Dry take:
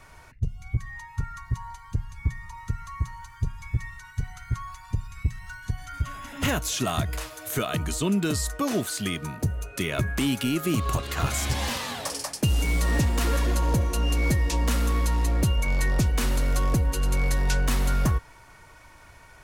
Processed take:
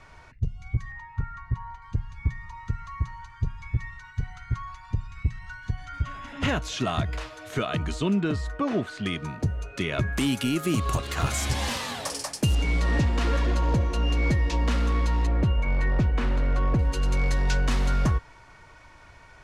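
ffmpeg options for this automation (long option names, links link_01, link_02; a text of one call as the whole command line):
ffmpeg -i in.wav -af "asetnsamples=nb_out_samples=441:pad=0,asendcmd='0.92 lowpass f 2300;1.82 lowpass f 4200;8.21 lowpass f 2500;9.06 lowpass f 4900;10.13 lowpass f 11000;12.55 lowpass f 4300;15.27 lowpass f 2300;16.79 lowpass f 5800',lowpass=5400" out.wav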